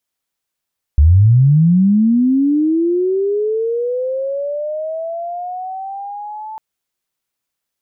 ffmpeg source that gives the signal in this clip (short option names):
-f lavfi -i "aevalsrc='pow(10,(-5-21*t/5.6)/20)*sin(2*PI*(68*t+812*t*t/(2*5.6)))':d=5.6:s=44100"